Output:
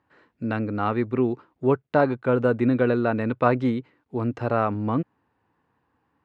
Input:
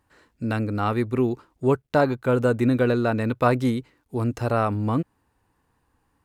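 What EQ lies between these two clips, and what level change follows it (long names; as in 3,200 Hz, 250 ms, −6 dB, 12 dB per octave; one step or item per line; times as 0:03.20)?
band-pass filter 120–2,800 Hz
0.0 dB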